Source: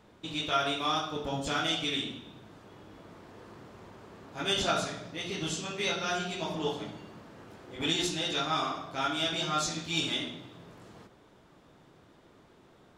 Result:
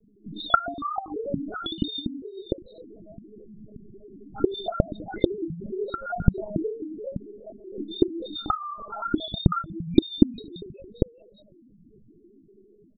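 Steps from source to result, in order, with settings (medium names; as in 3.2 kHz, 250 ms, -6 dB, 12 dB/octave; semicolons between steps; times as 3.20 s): 2.13–3.63 s: one-bit delta coder 16 kbps, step -46.5 dBFS; level-controlled noise filter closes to 900 Hz, open at -29 dBFS; level rider gain up to 5 dB; frequency-shifting echo 410 ms, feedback 41%, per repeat +110 Hz, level -13 dB; compression 12:1, threshold -30 dBFS, peak gain reduction 12.5 dB; loudest bins only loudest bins 1; monotone LPC vocoder at 8 kHz 210 Hz; loudness maximiser +13.5 dB; trim -1 dB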